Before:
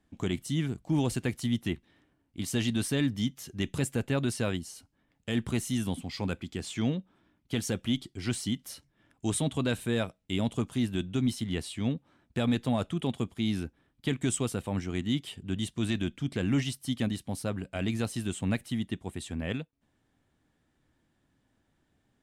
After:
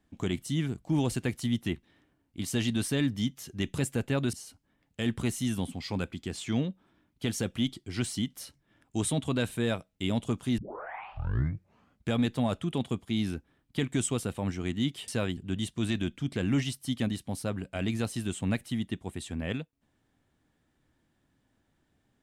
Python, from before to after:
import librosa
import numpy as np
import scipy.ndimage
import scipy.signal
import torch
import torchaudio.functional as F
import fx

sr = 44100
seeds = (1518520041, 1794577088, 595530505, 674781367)

y = fx.edit(x, sr, fx.move(start_s=4.33, length_s=0.29, to_s=15.37),
    fx.tape_start(start_s=10.87, length_s=1.59), tone=tone)